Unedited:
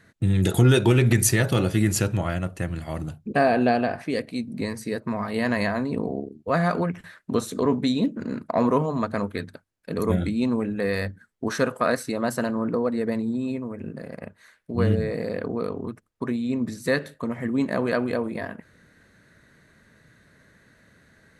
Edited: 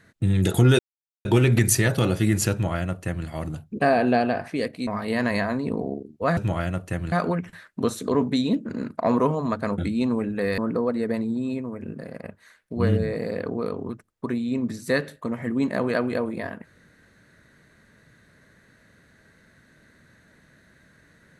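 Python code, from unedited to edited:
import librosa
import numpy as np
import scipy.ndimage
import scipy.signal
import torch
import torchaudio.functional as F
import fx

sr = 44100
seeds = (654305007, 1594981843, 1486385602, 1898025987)

y = fx.edit(x, sr, fx.insert_silence(at_s=0.79, length_s=0.46),
    fx.duplicate(start_s=2.06, length_s=0.75, to_s=6.63),
    fx.cut(start_s=4.41, length_s=0.72),
    fx.cut(start_s=9.29, length_s=0.9),
    fx.cut(start_s=10.99, length_s=1.57), tone=tone)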